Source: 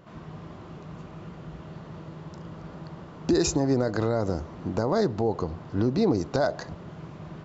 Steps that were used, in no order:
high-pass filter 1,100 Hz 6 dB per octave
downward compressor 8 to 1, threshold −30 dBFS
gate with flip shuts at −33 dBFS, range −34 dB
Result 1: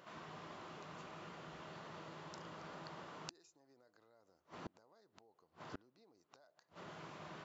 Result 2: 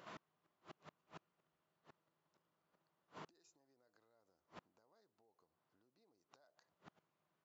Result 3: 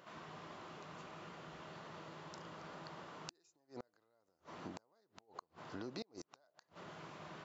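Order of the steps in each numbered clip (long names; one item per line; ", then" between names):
high-pass filter, then downward compressor, then gate with flip
downward compressor, then gate with flip, then high-pass filter
downward compressor, then high-pass filter, then gate with flip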